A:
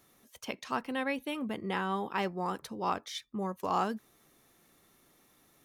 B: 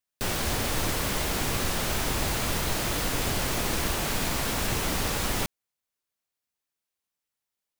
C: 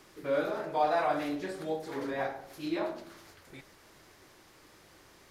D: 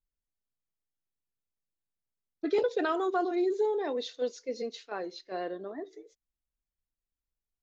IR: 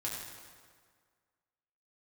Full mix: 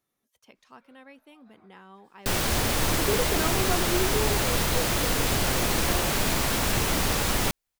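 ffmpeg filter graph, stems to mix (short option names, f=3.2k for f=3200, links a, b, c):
-filter_complex "[0:a]volume=-16.5dB,asplit=2[a][b];[1:a]adelay=2050,volume=3dB[c];[2:a]highpass=f=810:w=0.5412,highpass=f=810:w=1.3066,acompressor=threshold=-40dB:ratio=3,adelay=550,volume=-16.5dB[d];[3:a]adelay=550,volume=-1.5dB[e];[b]apad=whole_len=258061[f];[d][f]sidechaincompress=threshold=-59dB:ratio=5:attack=20:release=232[g];[a][c][g][e]amix=inputs=4:normalize=0"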